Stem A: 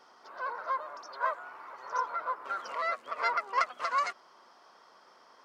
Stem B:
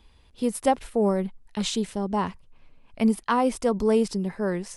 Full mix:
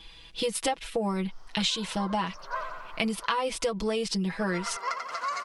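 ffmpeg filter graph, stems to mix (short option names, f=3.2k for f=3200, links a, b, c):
-filter_complex "[0:a]bass=f=250:g=6,treble=f=4k:g=7,adelay=1300,volume=-2.5dB,asplit=3[a][b][c];[a]atrim=end=3.26,asetpts=PTS-STARTPTS,afade=t=out:st=3.256:d=0.004:c=hsin[d];[b]atrim=start=3.26:end=4.39,asetpts=PTS-STARTPTS,volume=0[e];[c]atrim=start=4.39,asetpts=PTS-STARTPTS,afade=t=in:d=0.004:c=hsin[f];[d][e][f]concat=n=3:v=0:a=1,asplit=2[g][h];[h]volume=-7dB[i];[1:a]equalizer=f=3.3k:t=o:w=2.1:g=13.5,aecho=1:1:6.1:0.95,volume=1dB[j];[i]aecho=0:1:89|178|267|356|445|534|623|712|801:1|0.59|0.348|0.205|0.121|0.0715|0.0422|0.0249|0.0147[k];[g][j][k]amix=inputs=3:normalize=0,acompressor=threshold=-26dB:ratio=6"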